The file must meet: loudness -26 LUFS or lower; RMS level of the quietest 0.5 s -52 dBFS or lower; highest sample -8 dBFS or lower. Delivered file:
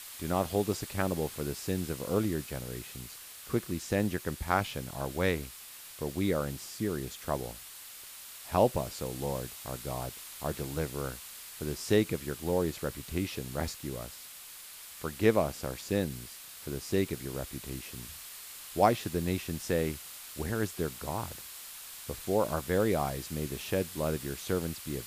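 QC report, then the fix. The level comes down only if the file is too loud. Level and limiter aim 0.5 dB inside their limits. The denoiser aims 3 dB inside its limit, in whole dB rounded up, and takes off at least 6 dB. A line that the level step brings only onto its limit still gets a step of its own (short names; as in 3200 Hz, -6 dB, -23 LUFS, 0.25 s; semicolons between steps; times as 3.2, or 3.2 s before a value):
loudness -33.5 LUFS: OK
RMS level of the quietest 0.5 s -48 dBFS: fail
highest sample -10.0 dBFS: OK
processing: denoiser 7 dB, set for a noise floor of -48 dBFS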